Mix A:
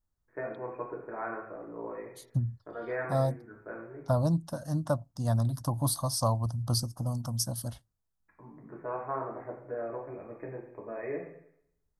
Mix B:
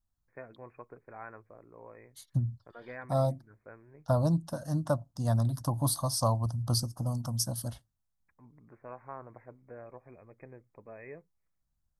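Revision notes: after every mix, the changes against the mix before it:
reverb: off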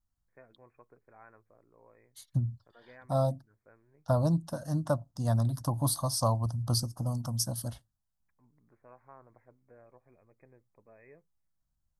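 first voice -10.0 dB

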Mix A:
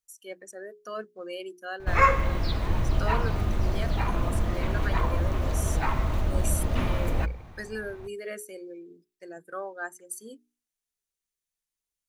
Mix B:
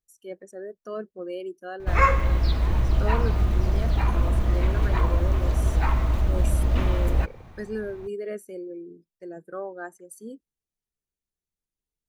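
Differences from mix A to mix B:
speech: add tilt shelf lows +8 dB, about 780 Hz; master: remove notches 60/120/180/240/300/360/420 Hz

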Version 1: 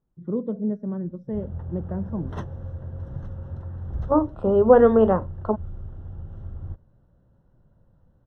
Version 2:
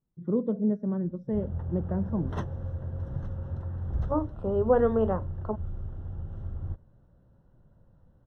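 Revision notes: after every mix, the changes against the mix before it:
second voice -8.5 dB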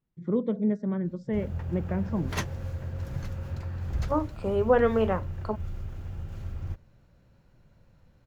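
master: remove running mean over 19 samples

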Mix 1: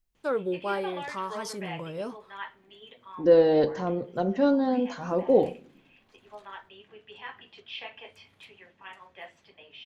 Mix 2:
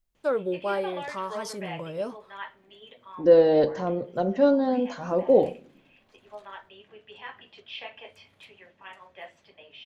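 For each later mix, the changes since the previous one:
master: add bell 590 Hz +5.5 dB 0.34 oct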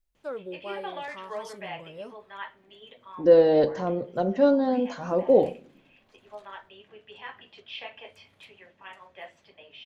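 first voice -9.5 dB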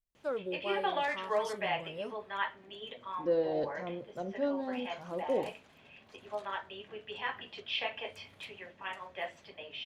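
second voice -11.0 dB; background +4.5 dB; reverb: off

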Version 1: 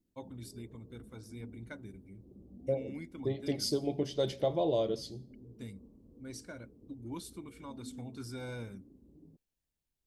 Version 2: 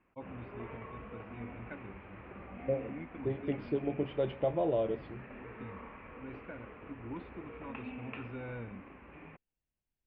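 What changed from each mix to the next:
background: remove ladder low-pass 390 Hz, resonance 30%; master: add elliptic low-pass 2800 Hz, stop band 60 dB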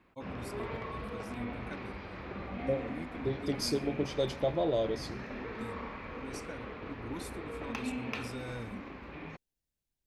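background +6.5 dB; master: remove elliptic low-pass 2800 Hz, stop band 60 dB

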